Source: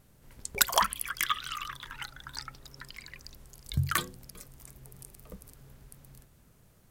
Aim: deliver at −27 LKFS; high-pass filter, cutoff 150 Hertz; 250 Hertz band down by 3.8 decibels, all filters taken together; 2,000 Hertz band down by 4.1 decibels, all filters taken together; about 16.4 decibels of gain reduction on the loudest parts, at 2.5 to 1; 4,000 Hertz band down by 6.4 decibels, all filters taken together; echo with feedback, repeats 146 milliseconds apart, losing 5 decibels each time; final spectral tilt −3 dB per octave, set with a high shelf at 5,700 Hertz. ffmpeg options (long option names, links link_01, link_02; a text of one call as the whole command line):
ffmpeg -i in.wav -af "highpass=150,equalizer=frequency=250:width_type=o:gain=-3.5,equalizer=frequency=2000:width_type=o:gain=-4,equalizer=frequency=4000:width_type=o:gain=-5,highshelf=frequency=5700:gain=-5,acompressor=threshold=-48dB:ratio=2.5,aecho=1:1:146|292|438|584|730|876|1022:0.562|0.315|0.176|0.0988|0.0553|0.031|0.0173,volume=21.5dB" out.wav